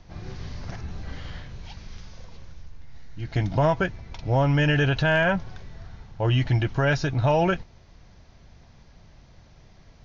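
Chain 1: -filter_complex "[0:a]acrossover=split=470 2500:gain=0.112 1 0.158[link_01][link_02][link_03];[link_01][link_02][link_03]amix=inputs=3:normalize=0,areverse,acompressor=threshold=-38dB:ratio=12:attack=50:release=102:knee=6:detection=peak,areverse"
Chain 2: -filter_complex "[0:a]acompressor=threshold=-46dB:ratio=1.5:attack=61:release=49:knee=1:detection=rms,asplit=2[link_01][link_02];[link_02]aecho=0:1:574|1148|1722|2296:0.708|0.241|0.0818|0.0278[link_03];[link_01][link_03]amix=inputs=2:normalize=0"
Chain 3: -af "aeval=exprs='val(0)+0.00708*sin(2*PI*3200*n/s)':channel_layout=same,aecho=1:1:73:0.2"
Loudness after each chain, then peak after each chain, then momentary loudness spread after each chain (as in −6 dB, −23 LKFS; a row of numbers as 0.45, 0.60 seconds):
−39.5, −32.0, −24.0 LKFS; −22.0, −16.5, −10.5 dBFS; 19, 20, 22 LU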